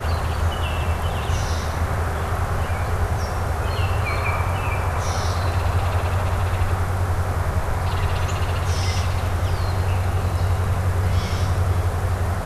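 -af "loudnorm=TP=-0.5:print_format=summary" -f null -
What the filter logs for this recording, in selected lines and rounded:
Input Integrated:    -23.0 LUFS
Input True Peak:      -9.6 dBTP
Input LRA:             1.4 LU
Input Threshold:     -33.0 LUFS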